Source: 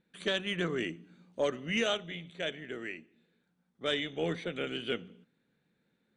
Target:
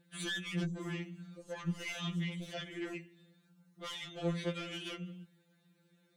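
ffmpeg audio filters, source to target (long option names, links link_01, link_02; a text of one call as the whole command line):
ffmpeg -i in.wav -filter_complex "[0:a]highpass=40,bass=frequency=250:gain=2,treble=frequency=4000:gain=7,acompressor=threshold=-36dB:ratio=5,asoftclip=type=tanh:threshold=-36dB,asettb=1/sr,asplit=3[link_01][link_02][link_03];[link_01]atrim=end=0.644[link_04];[link_02]atrim=start=0.64:end=2.94,asetpts=PTS-STARTPTS,afade=type=in:duration=0.004:curve=qsin,afade=type=out:start_time=2.296:duration=0.004:curve=qsin,acrossover=split=390|5900[link_05][link_06][link_07];[link_07]adelay=30[link_08];[link_06]adelay=130[link_09];[link_05][link_09][link_08]amix=inputs=3:normalize=0,atrim=end_sample=101430[link_10];[link_03]atrim=start=2.936[link_11];[link_04][link_10]acrossfade=duration=0.004:curve1=hsin:curve2=qsin[link_12];[link_12][link_11]acrossfade=duration=0.004:curve1=qsin:curve2=hsin,afftfilt=real='re*2.83*eq(mod(b,8),0)':imag='im*2.83*eq(mod(b,8),0)':win_size=2048:overlap=0.75,volume=5.5dB" out.wav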